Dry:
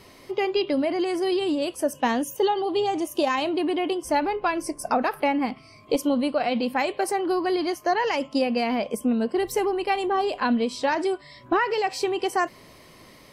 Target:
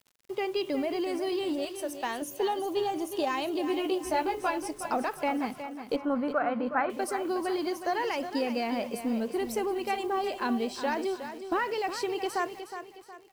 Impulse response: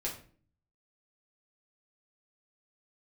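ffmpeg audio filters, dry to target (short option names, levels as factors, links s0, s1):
-filter_complex "[0:a]agate=range=0.355:threshold=0.01:ratio=16:detection=peak,asettb=1/sr,asplit=3[s0][s1][s2];[s0]atrim=end=1.654[s3];[s1]atrim=start=1.65:end=2.22,asetpts=PTS-STARTPTS,afade=t=in:d=0.004:c=qsin,afade=t=out:st=0.566:d=0.004:c=qsin,equalizer=f=220:t=o:w=2.2:g=-11.5[s4];[s2]atrim=start=2.216[s5];[s3][s4]acrossfade=d=0.004:c1=hsin:c2=qsin[s6];[s6][s5]acrossfade=d=0.004:c1=qsin:c2=hsin,asplit=2[s7][s8];[s8]asoftclip=type=tanh:threshold=0.0355,volume=0.282[s9];[s7][s9]amix=inputs=2:normalize=0,acrusher=bits=7:mix=0:aa=0.000001,asettb=1/sr,asplit=3[s10][s11][s12];[s10]atrim=end=3.684[s13];[s11]atrim=start=3.68:end=4.5,asetpts=PTS-STARTPTS,afade=t=in:d=0.004:c=qsin,afade=t=out:st=0.816:d=0.004:c=qsin,asplit=2[s14][s15];[s15]adelay=16,volume=0.708[s16];[s14][s16]amix=inputs=2:normalize=0,atrim=end_sample=36162[s17];[s12]atrim=start=4.496[s18];[s13][s17]acrossfade=d=0.004:c1=hsin:c2=qsin[s19];[s19][s18]acrossfade=d=0.004:c1=qsin:c2=hsin,asettb=1/sr,asplit=3[s20][s21][s22];[s20]atrim=end=5.964[s23];[s21]atrim=start=5.96:end=6.9,asetpts=PTS-STARTPTS,afade=t=in:d=0.004:c=qsin,afade=t=out:st=0.936:d=0.004:c=qsin,lowpass=f=1400:t=q:w=4.6[s24];[s22]atrim=start=6.896[s25];[s23][s24]acrossfade=d=0.004:c1=hsin:c2=qsin[s26];[s26][s25]acrossfade=d=0.004:c1=qsin:c2=hsin,asplit=2[s27][s28];[s28]aecho=0:1:365|730|1095|1460:0.316|0.123|0.0481|0.0188[s29];[s27][s29]amix=inputs=2:normalize=0,volume=0.422"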